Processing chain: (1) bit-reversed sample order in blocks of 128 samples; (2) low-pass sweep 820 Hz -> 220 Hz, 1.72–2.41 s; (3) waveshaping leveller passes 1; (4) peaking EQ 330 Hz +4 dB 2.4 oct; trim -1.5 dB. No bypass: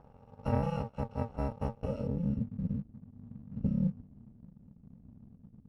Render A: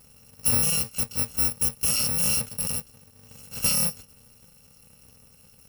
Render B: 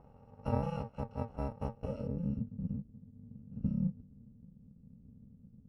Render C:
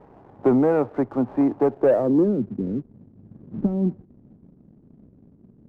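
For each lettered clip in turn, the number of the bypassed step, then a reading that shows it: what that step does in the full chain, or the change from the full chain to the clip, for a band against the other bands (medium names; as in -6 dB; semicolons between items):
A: 2, momentary loudness spread change -11 LU; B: 3, crest factor change +2.5 dB; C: 1, 125 Hz band -10.5 dB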